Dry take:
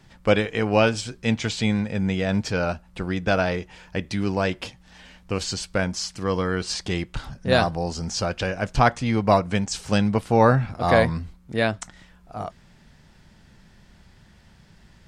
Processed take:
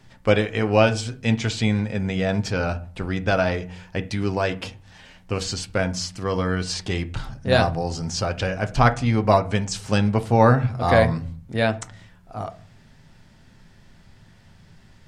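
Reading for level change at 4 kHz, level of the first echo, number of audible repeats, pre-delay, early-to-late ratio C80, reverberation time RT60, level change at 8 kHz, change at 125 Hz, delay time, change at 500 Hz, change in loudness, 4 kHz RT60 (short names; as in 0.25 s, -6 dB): 0.0 dB, none, none, 7 ms, 23.5 dB, 0.45 s, 0.0 dB, +3.0 dB, none, +1.0 dB, +1.0 dB, 0.35 s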